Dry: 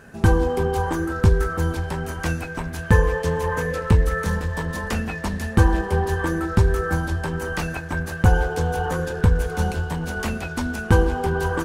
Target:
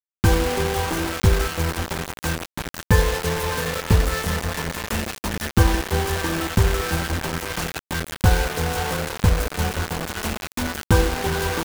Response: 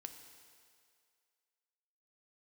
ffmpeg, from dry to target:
-af "acrusher=bits=3:mix=0:aa=0.000001,aeval=exprs='sgn(val(0))*max(abs(val(0))-0.0299,0)':c=same"

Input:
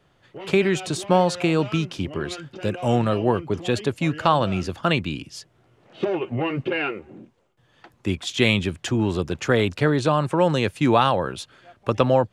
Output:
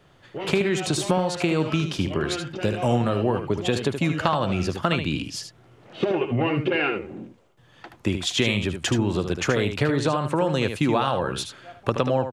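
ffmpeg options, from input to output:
-af "acompressor=threshold=-25dB:ratio=4,aecho=1:1:76:0.398,volume=5dB"

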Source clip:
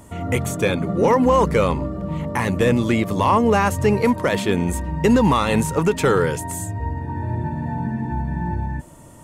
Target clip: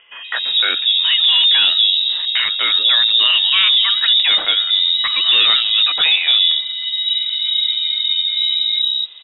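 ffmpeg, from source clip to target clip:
-filter_complex "[0:a]acrossover=split=790[a][b];[a]adelay=240[c];[c][b]amix=inputs=2:normalize=0,apsyclip=14.5dB,lowpass=f=3.3k:t=q:w=0.5098,lowpass=f=3.3k:t=q:w=0.6013,lowpass=f=3.3k:t=q:w=0.9,lowpass=f=3.3k:t=q:w=2.563,afreqshift=-3900,volume=-8dB"

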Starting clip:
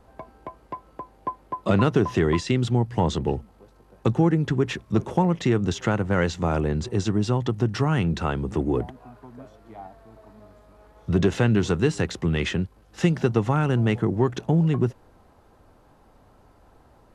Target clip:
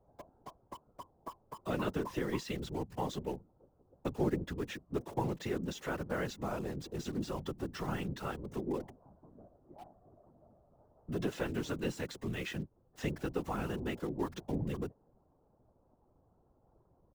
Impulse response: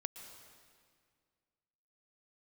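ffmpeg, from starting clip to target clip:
-filter_complex "[0:a]aecho=1:1:6.2:0.38,acrossover=split=180|1000[a][b][c];[a]acompressor=threshold=-34dB:ratio=6[d];[c]acrusher=bits=6:mix=0:aa=0.000001[e];[d][b][e]amix=inputs=3:normalize=0,afftfilt=real='hypot(re,im)*cos(2*PI*random(0))':imag='hypot(re,im)*sin(2*PI*random(1))':win_size=512:overlap=0.75,volume=-7dB"

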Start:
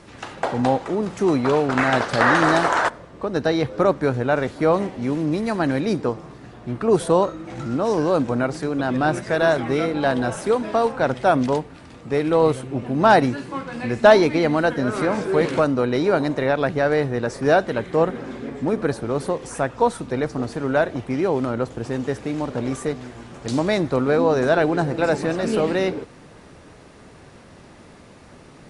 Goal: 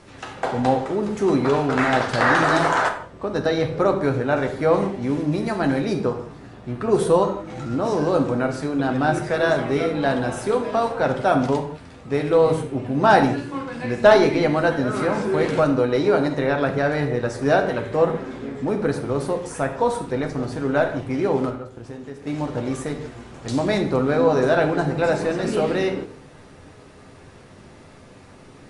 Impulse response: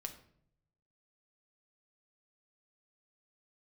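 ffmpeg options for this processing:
-filter_complex "[0:a]asettb=1/sr,asplit=3[a][b][c];[a]atrim=end=21.494[d];[b]atrim=start=21.49:end=22.27,asetpts=PTS-STARTPTS,afade=t=in:d=0.004:c=qsin,afade=t=out:st=0.776:d=0.004:c=qsin,acompressor=threshold=-32dB:ratio=8[e];[c]atrim=start=22.266[f];[d][e]acrossfade=d=0.004:c1=hsin:c2=qsin[g];[g][f]acrossfade=d=0.004:c1=qsin:c2=hsin[h];[1:a]atrim=start_sample=2205,afade=t=out:st=0.17:d=0.01,atrim=end_sample=7938,asetrate=29106,aresample=44100[i];[h][i]afir=irnorm=-1:irlink=0"

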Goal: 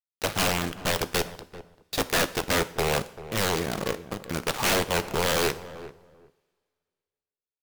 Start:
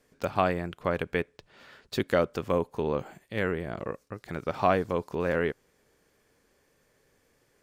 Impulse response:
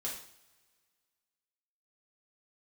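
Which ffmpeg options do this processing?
-filter_complex "[0:a]highpass=45,lowshelf=f=68:g=3.5,acrusher=bits=5:mix=0:aa=0.000001,aeval=exprs='(mod(11.9*val(0)+1,2)-1)/11.9':c=same,asplit=2[a][b];[b]adelay=390,lowpass=f=1k:p=1,volume=-13.5dB,asplit=2[c][d];[d]adelay=390,lowpass=f=1k:p=1,volume=0.19[e];[a][c][e]amix=inputs=3:normalize=0,asplit=2[f][g];[1:a]atrim=start_sample=2205,asetrate=38808,aresample=44100[h];[g][h]afir=irnorm=-1:irlink=0,volume=-12.5dB[i];[f][i]amix=inputs=2:normalize=0,volume=3dB"

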